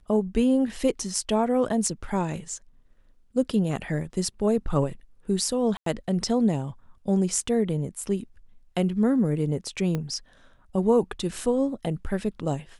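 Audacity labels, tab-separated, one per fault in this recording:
5.770000	5.860000	gap 93 ms
9.950000	9.950000	pop -16 dBFS

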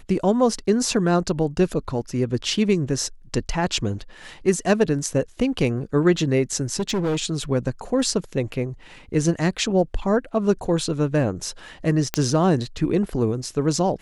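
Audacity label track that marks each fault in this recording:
6.790000	7.200000	clipped -19.5 dBFS
12.140000	12.140000	pop -5 dBFS

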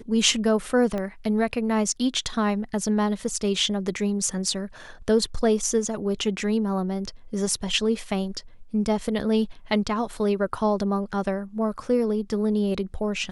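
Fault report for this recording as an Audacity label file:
0.980000	0.980000	pop -18 dBFS

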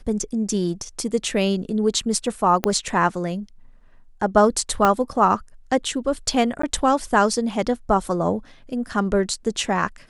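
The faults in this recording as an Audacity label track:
2.640000	2.640000	pop -5 dBFS
4.850000	4.850000	pop -5 dBFS
6.620000	6.630000	gap 14 ms

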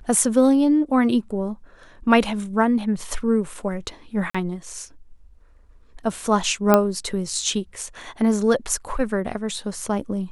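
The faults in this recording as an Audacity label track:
4.300000	4.340000	gap 45 ms
6.740000	6.740000	pop -2 dBFS

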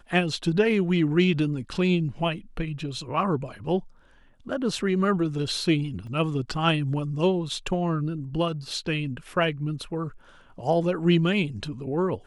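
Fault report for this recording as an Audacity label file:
6.070000	6.070000	gap 3.1 ms

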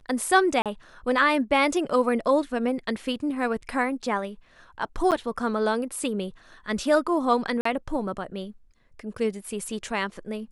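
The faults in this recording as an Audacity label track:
0.620000	0.660000	gap 37 ms
5.110000	5.120000	gap 8.2 ms
7.610000	7.650000	gap 44 ms

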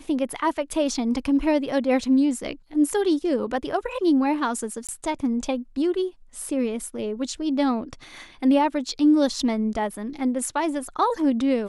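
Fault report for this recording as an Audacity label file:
4.870000	4.890000	gap 17 ms

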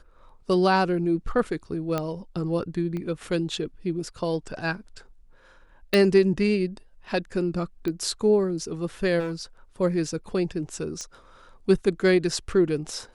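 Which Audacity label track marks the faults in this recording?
1.980000	1.980000	pop -13 dBFS
2.970000	2.970000	pop -22 dBFS
5.940000	5.940000	pop -8 dBFS
7.880000	7.880000	pop -18 dBFS
9.190000	9.410000	clipped -26.5 dBFS
11.010000	11.010000	pop -22 dBFS

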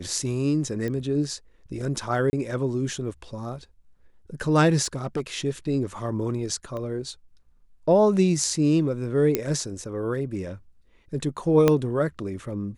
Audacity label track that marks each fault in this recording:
0.880000	0.880000	pop -19 dBFS
2.300000	2.330000	gap 30 ms
4.830000	5.200000	clipped -22 dBFS
6.770000	6.770000	pop -23 dBFS
9.350000	9.350000	pop -8 dBFS
11.680000	11.680000	pop -6 dBFS

